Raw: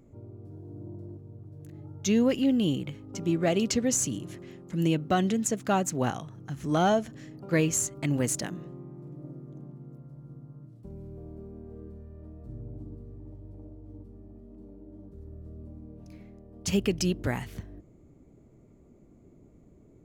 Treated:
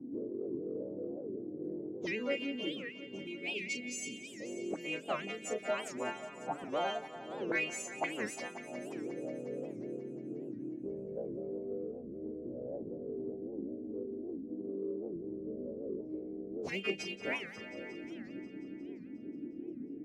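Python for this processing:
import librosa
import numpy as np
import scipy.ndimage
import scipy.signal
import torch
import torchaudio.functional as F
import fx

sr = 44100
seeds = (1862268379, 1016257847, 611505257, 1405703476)

p1 = fx.freq_snap(x, sr, grid_st=2)
p2 = fx.spec_box(p1, sr, start_s=2.66, length_s=1.75, low_hz=460.0, high_hz=2000.0, gain_db=-19)
p3 = fx.peak_eq(p2, sr, hz=300.0, db=15.0, octaves=2.5)
p4 = fx.hpss(p3, sr, part='harmonic', gain_db=-15)
p5 = fx.chorus_voices(p4, sr, voices=6, hz=0.14, base_ms=28, depth_ms=4.3, mix_pct=35)
p6 = fx.auto_wah(p5, sr, base_hz=240.0, top_hz=2300.0, q=5.1, full_db=-31.0, direction='up')
p7 = 10.0 ** (-37.5 / 20.0) * np.tanh(p6 / 10.0 ** (-37.5 / 20.0))
p8 = p7 + fx.echo_heads(p7, sr, ms=179, heads='all three', feedback_pct=53, wet_db=-16.5, dry=0)
p9 = fx.record_warp(p8, sr, rpm=78.0, depth_cents=250.0)
y = F.gain(torch.from_numpy(p9), 17.0).numpy()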